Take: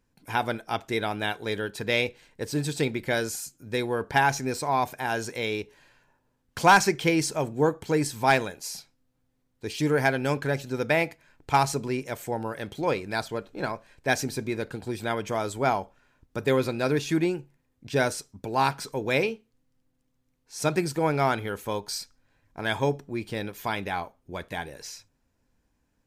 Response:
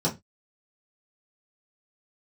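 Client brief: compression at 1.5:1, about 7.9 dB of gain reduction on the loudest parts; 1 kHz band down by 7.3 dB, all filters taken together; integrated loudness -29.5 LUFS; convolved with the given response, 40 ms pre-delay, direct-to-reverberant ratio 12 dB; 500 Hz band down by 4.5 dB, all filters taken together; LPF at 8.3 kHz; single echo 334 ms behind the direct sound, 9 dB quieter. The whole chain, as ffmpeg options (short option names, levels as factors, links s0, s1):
-filter_complex "[0:a]lowpass=8300,equalizer=f=500:t=o:g=-3.5,equalizer=f=1000:t=o:g=-8.5,acompressor=threshold=0.00794:ratio=1.5,aecho=1:1:334:0.355,asplit=2[s0][s1];[1:a]atrim=start_sample=2205,adelay=40[s2];[s1][s2]afir=irnorm=-1:irlink=0,volume=0.075[s3];[s0][s3]amix=inputs=2:normalize=0,volume=2"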